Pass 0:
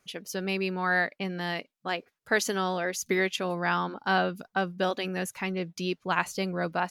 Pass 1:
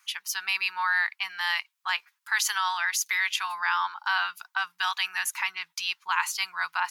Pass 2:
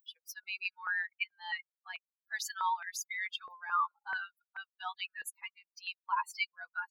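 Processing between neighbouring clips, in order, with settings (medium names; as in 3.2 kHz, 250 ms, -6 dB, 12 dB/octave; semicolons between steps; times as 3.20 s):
elliptic high-pass 920 Hz, stop band 40 dB; treble shelf 12 kHz +4.5 dB; in parallel at +1 dB: compressor with a negative ratio -34 dBFS, ratio -1
expander on every frequency bin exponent 3; upward compressor, threshold -43 dBFS; step-sequenced high-pass 4.6 Hz 480–2300 Hz; trim -8.5 dB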